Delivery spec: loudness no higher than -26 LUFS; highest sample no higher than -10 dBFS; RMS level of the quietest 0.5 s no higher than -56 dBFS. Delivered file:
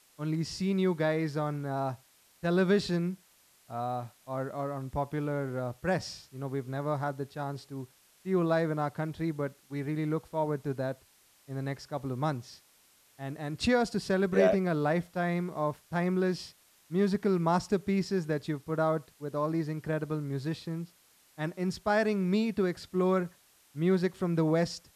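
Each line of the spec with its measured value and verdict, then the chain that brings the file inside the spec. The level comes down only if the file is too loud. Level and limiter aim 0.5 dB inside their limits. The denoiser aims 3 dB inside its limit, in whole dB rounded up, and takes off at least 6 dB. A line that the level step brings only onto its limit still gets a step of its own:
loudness -31.5 LUFS: pass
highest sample -12.0 dBFS: pass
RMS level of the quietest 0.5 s -64 dBFS: pass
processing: none needed

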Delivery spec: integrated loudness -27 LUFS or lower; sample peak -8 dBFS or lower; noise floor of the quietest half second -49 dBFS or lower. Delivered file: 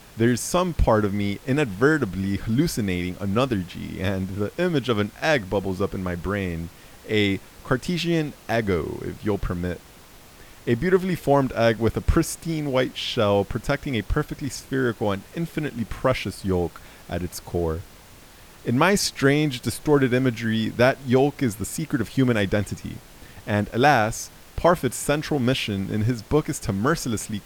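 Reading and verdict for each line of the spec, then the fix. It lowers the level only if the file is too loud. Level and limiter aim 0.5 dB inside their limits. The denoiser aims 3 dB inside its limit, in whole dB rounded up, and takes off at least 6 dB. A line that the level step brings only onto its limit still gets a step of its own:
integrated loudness -23.5 LUFS: fail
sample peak -4.0 dBFS: fail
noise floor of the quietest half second -47 dBFS: fail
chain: trim -4 dB; peak limiter -8.5 dBFS

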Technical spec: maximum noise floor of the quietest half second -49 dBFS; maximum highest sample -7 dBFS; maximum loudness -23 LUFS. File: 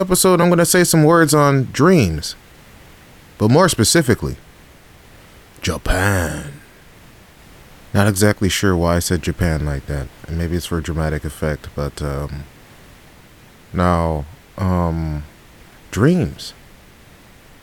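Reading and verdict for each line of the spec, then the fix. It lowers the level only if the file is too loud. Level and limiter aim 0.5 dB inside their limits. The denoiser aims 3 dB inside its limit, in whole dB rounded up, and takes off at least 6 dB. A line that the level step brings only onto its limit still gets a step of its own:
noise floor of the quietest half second -45 dBFS: fail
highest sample -1.5 dBFS: fail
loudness -17.0 LUFS: fail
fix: trim -6.5 dB

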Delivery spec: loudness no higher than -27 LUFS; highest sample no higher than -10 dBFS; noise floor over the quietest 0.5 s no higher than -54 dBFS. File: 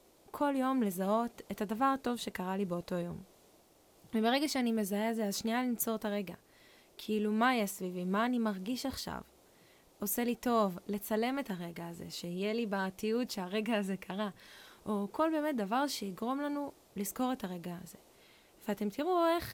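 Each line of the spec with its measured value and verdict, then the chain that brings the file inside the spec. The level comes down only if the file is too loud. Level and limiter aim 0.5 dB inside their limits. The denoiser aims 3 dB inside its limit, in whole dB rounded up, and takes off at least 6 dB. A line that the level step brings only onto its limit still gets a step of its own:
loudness -34.5 LUFS: pass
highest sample -18.0 dBFS: pass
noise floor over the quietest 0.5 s -64 dBFS: pass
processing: none needed

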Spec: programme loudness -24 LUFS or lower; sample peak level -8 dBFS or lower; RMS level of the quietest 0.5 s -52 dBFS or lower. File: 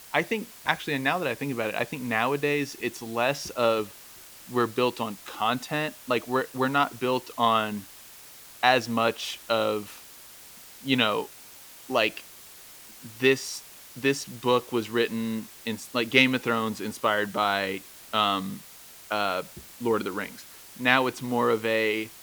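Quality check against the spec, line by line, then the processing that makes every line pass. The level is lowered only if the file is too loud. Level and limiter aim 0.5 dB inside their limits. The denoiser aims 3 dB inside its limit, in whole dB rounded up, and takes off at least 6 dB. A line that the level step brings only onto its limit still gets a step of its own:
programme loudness -26.5 LUFS: pass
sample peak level -2.0 dBFS: fail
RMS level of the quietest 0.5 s -48 dBFS: fail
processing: noise reduction 7 dB, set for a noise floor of -48 dBFS; peak limiter -8.5 dBFS

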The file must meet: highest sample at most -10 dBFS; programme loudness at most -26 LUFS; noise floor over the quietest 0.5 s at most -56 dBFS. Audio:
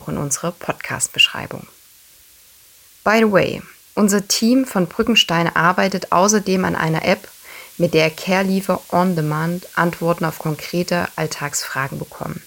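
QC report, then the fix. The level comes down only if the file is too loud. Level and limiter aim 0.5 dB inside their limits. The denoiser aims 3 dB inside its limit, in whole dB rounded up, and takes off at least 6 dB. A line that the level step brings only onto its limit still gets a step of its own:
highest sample -2.0 dBFS: fail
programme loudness -18.0 LUFS: fail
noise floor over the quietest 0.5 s -48 dBFS: fail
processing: trim -8.5 dB

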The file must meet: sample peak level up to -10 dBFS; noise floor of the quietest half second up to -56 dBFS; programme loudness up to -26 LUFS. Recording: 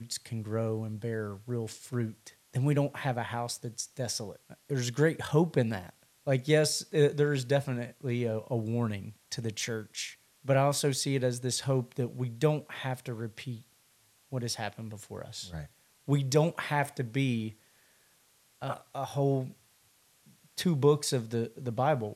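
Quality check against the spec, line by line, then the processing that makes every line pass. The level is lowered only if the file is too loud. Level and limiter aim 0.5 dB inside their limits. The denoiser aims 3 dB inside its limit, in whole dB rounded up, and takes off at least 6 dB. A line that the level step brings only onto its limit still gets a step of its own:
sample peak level -11.5 dBFS: pass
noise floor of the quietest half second -66 dBFS: pass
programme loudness -31.5 LUFS: pass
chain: none needed

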